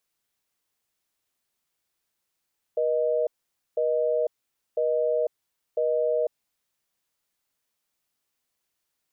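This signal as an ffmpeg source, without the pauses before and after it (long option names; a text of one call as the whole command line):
ffmpeg -f lavfi -i "aevalsrc='0.0631*(sin(2*PI*480*t)+sin(2*PI*620*t))*clip(min(mod(t,1),0.5-mod(t,1))/0.005,0,1)':duration=3.66:sample_rate=44100" out.wav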